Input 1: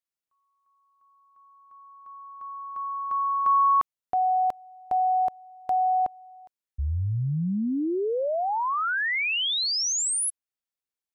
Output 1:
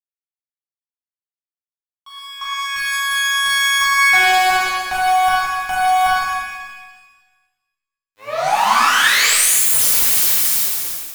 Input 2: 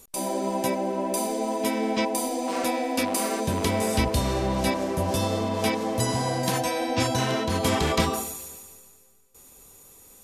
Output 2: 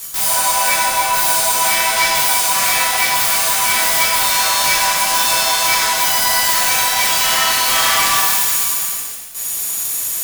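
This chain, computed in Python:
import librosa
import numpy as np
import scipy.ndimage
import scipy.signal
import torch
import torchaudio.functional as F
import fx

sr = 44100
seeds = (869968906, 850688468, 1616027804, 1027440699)

p1 = fx.tracing_dist(x, sr, depth_ms=0.4)
p2 = scipy.signal.sosfilt(scipy.signal.butter(4, 850.0, 'highpass', fs=sr, output='sos'), p1)
p3 = fx.tilt_eq(p2, sr, slope=4.0)
p4 = fx.rider(p3, sr, range_db=4, speed_s=2.0)
p5 = p4 + fx.echo_alternate(p4, sr, ms=159, hz=1800.0, feedback_pct=63, wet_db=-10.0, dry=0)
p6 = fx.fuzz(p5, sr, gain_db=33.0, gate_db=-39.0)
p7 = fx.rev_shimmer(p6, sr, seeds[0], rt60_s=1.3, semitones=7, shimmer_db=-8, drr_db=-7.0)
y = p7 * librosa.db_to_amplitude(-7.5)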